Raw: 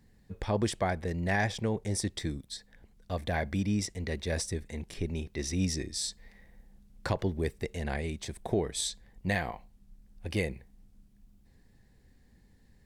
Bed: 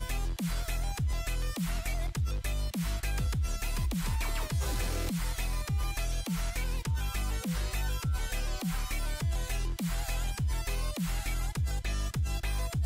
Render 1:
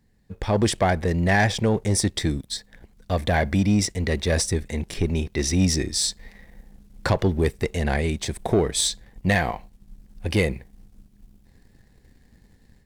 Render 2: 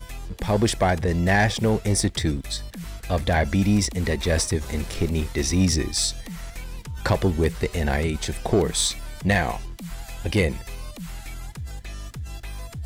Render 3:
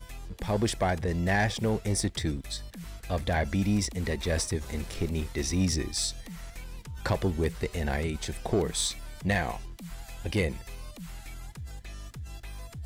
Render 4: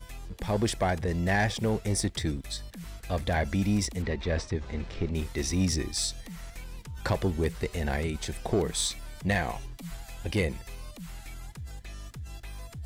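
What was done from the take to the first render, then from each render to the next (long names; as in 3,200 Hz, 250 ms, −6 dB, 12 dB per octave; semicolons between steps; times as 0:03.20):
automatic gain control gain up to 7 dB; leveller curve on the samples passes 1
mix in bed −3 dB
level −6.5 dB
0:04.02–0:05.15: high-frequency loss of the air 160 metres; 0:09.55–0:09.97: comb filter 7.2 ms, depth 77%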